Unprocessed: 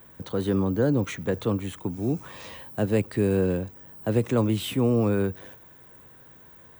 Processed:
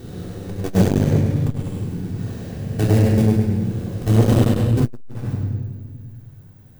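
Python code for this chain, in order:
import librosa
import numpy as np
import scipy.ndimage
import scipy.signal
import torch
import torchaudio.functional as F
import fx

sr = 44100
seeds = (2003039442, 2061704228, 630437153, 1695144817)

p1 = fx.spec_swells(x, sr, rise_s=2.77)
p2 = fx.level_steps(p1, sr, step_db=20)
p3 = fx.sample_hold(p2, sr, seeds[0], rate_hz=1200.0, jitter_pct=20)
p4 = p2 + F.gain(torch.from_numpy(p3), -3.5).numpy()
p5 = fx.bass_treble(p4, sr, bass_db=11, treble_db=7)
p6 = p5 + fx.echo_feedback(p5, sr, ms=101, feedback_pct=39, wet_db=-5.0, dry=0)
p7 = fx.room_shoebox(p6, sr, seeds[1], volume_m3=1400.0, walls='mixed', distance_m=3.5)
p8 = fx.transformer_sat(p7, sr, knee_hz=290.0)
y = F.gain(torch.from_numpy(p8), -8.5).numpy()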